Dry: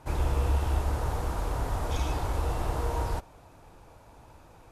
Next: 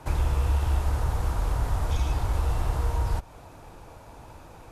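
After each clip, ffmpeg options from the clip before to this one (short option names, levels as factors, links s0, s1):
-filter_complex "[0:a]acrossover=split=160|820[s0][s1][s2];[s0]acompressor=threshold=0.0447:ratio=4[s3];[s1]acompressor=threshold=0.00398:ratio=4[s4];[s2]acompressor=threshold=0.00562:ratio=4[s5];[s3][s4][s5]amix=inputs=3:normalize=0,volume=2.11"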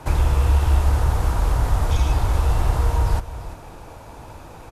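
-af "aecho=1:1:340:0.2,volume=2.11"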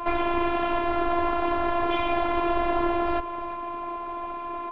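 -af "aeval=exprs='val(0)+0.01*sin(2*PI*1100*n/s)':c=same,highpass=f=160:t=q:w=0.5412,highpass=f=160:t=q:w=1.307,lowpass=f=3200:t=q:w=0.5176,lowpass=f=3200:t=q:w=0.7071,lowpass=f=3200:t=q:w=1.932,afreqshift=-110,afftfilt=real='hypot(re,im)*cos(PI*b)':imag='0':win_size=512:overlap=0.75,volume=2.82"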